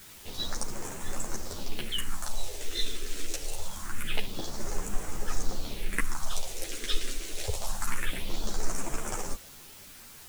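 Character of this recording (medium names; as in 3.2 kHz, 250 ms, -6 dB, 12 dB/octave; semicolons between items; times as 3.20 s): phasing stages 4, 0.25 Hz, lowest notch 140–3900 Hz; a quantiser's noise floor 8-bit, dither triangular; a shimmering, thickened sound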